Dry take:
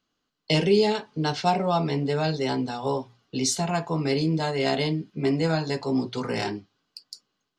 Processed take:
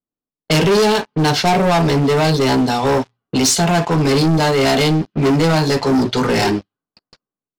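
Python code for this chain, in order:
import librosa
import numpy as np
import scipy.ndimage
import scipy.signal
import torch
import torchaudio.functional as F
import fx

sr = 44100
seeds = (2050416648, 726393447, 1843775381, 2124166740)

y = fx.leveller(x, sr, passes=5)
y = fx.env_lowpass(y, sr, base_hz=750.0, full_db=-11.5)
y = y * librosa.db_to_amplitude(-2.0)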